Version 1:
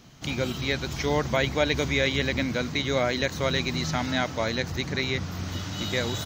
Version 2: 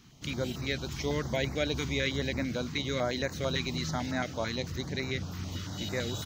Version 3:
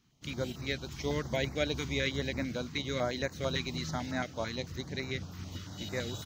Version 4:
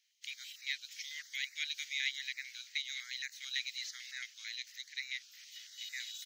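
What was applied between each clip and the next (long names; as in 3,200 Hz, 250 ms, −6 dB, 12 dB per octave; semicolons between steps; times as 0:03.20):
notch on a step sequencer 9 Hz 600–3,200 Hz; level −4.5 dB
expander for the loud parts 1.5 to 1, over −53 dBFS
elliptic high-pass filter 1,900 Hz, stop band 60 dB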